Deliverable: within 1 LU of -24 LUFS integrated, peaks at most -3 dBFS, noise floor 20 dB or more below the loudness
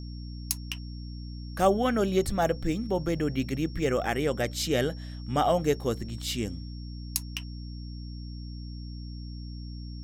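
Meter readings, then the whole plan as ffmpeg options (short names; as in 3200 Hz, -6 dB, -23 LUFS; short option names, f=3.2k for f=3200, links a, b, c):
hum 60 Hz; harmonics up to 300 Hz; hum level -36 dBFS; steady tone 5500 Hz; tone level -51 dBFS; loudness -29.0 LUFS; peak -7.0 dBFS; loudness target -24.0 LUFS
-> -af "bandreject=f=60:t=h:w=6,bandreject=f=120:t=h:w=6,bandreject=f=180:t=h:w=6,bandreject=f=240:t=h:w=6,bandreject=f=300:t=h:w=6"
-af "bandreject=f=5.5k:w=30"
-af "volume=5dB,alimiter=limit=-3dB:level=0:latency=1"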